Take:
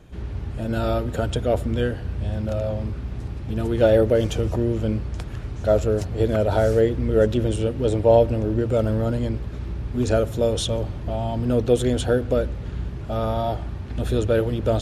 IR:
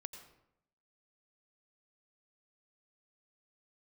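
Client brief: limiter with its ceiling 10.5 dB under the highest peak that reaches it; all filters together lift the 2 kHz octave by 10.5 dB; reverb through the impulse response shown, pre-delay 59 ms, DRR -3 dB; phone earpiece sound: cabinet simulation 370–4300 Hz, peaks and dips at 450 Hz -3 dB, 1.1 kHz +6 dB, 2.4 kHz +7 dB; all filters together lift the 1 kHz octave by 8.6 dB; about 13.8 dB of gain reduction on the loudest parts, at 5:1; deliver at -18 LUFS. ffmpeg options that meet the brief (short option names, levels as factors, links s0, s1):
-filter_complex "[0:a]equalizer=f=1000:t=o:g=8.5,equalizer=f=2000:t=o:g=8,acompressor=threshold=0.0708:ratio=5,alimiter=limit=0.0891:level=0:latency=1,asplit=2[s0][s1];[1:a]atrim=start_sample=2205,adelay=59[s2];[s1][s2]afir=irnorm=-1:irlink=0,volume=2.24[s3];[s0][s3]amix=inputs=2:normalize=0,highpass=370,equalizer=f=450:t=q:w=4:g=-3,equalizer=f=1100:t=q:w=4:g=6,equalizer=f=2400:t=q:w=4:g=7,lowpass=f=4300:w=0.5412,lowpass=f=4300:w=1.3066,volume=3.76"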